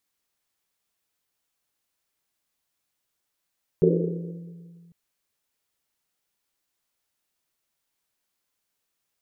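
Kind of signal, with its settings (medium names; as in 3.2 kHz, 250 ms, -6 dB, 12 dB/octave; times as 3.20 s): Risset drum, pitch 170 Hz, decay 2.27 s, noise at 410 Hz, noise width 190 Hz, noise 50%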